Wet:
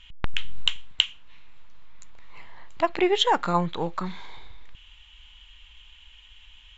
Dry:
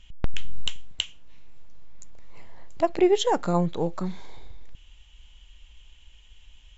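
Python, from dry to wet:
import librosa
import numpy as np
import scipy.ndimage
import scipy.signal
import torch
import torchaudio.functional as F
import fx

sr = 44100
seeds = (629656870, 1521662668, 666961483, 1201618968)

y = fx.band_shelf(x, sr, hz=1900.0, db=10.5, octaves=2.5)
y = F.gain(torch.from_numpy(y), -3.0).numpy()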